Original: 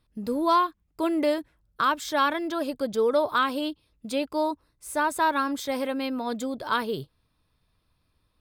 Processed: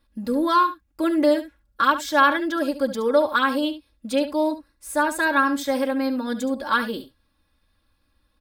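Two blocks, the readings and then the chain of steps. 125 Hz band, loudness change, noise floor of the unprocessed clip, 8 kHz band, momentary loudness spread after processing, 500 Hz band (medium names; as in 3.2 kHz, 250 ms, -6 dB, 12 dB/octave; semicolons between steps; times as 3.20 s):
no reading, +4.5 dB, -72 dBFS, +3.0 dB, 8 LU, +4.0 dB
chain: peaking EQ 1.6 kHz +6.5 dB 0.24 oct; comb 3.6 ms, depth 98%; on a send: delay 71 ms -12.5 dB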